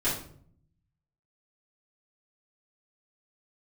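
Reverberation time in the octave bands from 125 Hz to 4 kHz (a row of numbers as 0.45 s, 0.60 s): 1.2 s, 0.90 s, 0.65 s, 0.50 s, 0.40 s, 0.40 s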